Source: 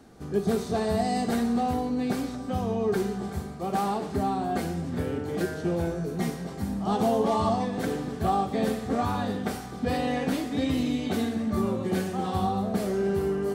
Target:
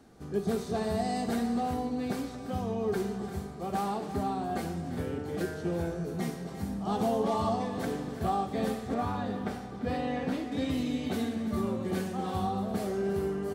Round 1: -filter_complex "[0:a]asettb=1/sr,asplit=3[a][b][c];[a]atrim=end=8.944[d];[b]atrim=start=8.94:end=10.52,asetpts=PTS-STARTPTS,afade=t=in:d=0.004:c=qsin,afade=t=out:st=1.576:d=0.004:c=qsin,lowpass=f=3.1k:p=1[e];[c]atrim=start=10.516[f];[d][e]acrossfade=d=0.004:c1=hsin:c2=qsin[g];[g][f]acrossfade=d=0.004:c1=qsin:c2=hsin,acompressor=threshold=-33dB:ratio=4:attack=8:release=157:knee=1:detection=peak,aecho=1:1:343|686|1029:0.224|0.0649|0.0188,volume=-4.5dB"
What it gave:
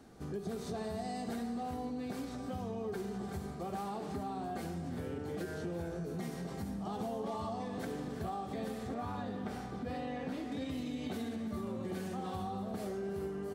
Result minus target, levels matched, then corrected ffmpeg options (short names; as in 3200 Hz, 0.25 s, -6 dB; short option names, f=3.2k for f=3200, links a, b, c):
compressor: peak gain reduction +12 dB
-filter_complex "[0:a]asettb=1/sr,asplit=3[a][b][c];[a]atrim=end=8.944[d];[b]atrim=start=8.94:end=10.52,asetpts=PTS-STARTPTS,afade=t=in:d=0.004:c=qsin,afade=t=out:st=1.576:d=0.004:c=qsin,lowpass=f=3.1k:p=1[e];[c]atrim=start=10.516[f];[d][e]acrossfade=d=0.004:c1=hsin:c2=qsin[g];[g][f]acrossfade=d=0.004:c1=qsin:c2=hsin,aecho=1:1:343|686|1029:0.224|0.0649|0.0188,volume=-4.5dB"